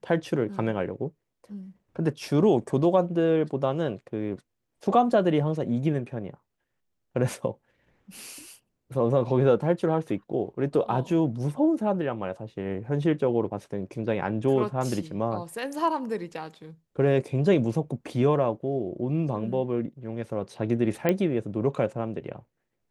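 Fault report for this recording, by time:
21.09 pop -11 dBFS

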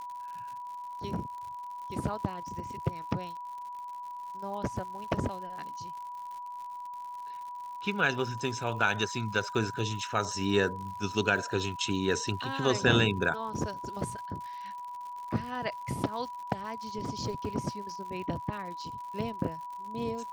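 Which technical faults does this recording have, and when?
crackle 120/s -41 dBFS
tone 980 Hz -38 dBFS

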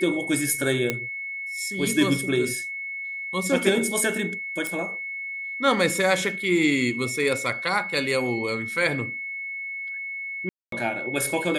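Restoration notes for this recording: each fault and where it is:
tone 2200 Hz -30 dBFS
0.9 pop -9 dBFS
4.67 pop
10.49–10.72 gap 0.233 s

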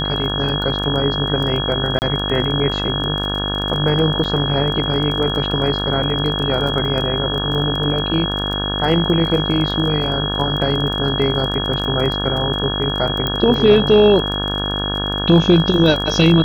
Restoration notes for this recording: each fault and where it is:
buzz 50 Hz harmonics 35 -24 dBFS
crackle 18/s -23 dBFS
tone 3300 Hz -22 dBFS
1.99–2.02 gap 29 ms
4.24–4.25 gap 5.7 ms
13.27 pop -7 dBFS

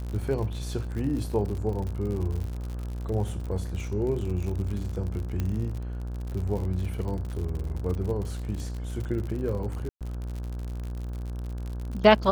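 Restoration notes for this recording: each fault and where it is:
buzz 60 Hz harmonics 28 -33 dBFS
crackle 71/s -33 dBFS
5.4 pop -17 dBFS
9.89–10.01 gap 0.117 s

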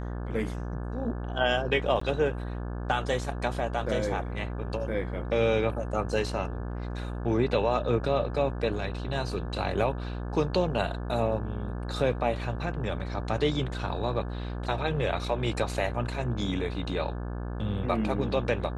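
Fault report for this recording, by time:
buzz 60 Hz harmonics 29 -34 dBFS
2–2.01 gap 14 ms

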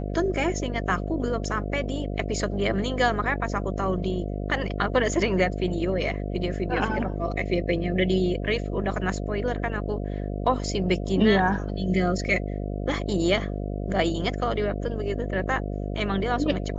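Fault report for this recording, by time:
buzz 50 Hz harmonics 14 -30 dBFS

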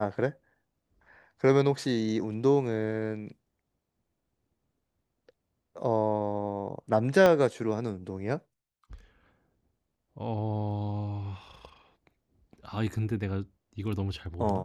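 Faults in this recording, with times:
7.26 pop -11 dBFS

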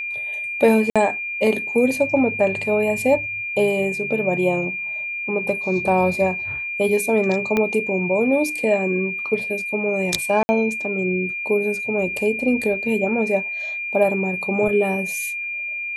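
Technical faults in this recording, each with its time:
tone 2400 Hz -25 dBFS
0.9–0.96 gap 56 ms
7.57 pop -8 dBFS
10.43–10.49 gap 60 ms

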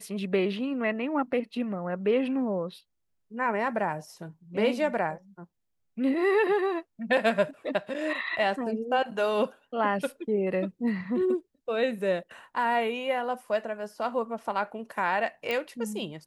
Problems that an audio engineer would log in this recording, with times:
15.51 pop -17 dBFS

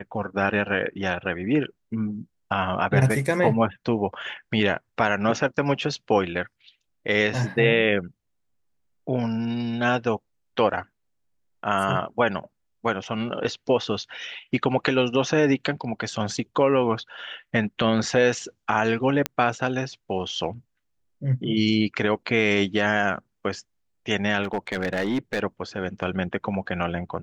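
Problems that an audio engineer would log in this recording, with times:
19.26 pop -7 dBFS
24.43–25.4 clipped -20 dBFS

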